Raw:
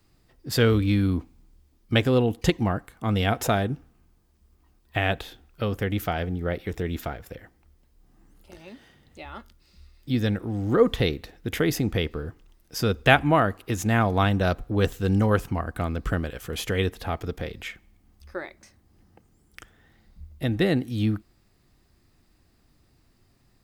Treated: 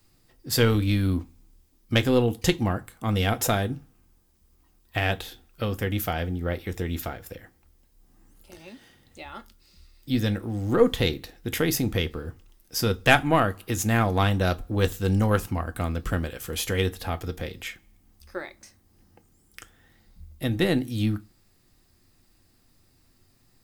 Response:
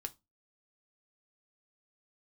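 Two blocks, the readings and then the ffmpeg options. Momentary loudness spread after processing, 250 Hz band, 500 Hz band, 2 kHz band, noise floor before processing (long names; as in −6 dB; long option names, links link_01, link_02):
16 LU, −1.0 dB, −1.0 dB, 0.0 dB, −63 dBFS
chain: -filter_complex "[0:a]aeval=exprs='0.891*(cos(1*acos(clip(val(0)/0.891,-1,1)))-cos(1*PI/2))+0.0631*(cos(4*acos(clip(val(0)/0.891,-1,1)))-cos(4*PI/2))':channel_layout=same,asplit=2[link_01][link_02];[1:a]atrim=start_sample=2205,highshelf=frequency=4100:gain=11.5[link_03];[link_02][link_03]afir=irnorm=-1:irlink=0,volume=7.5dB[link_04];[link_01][link_04]amix=inputs=2:normalize=0,volume=-10dB"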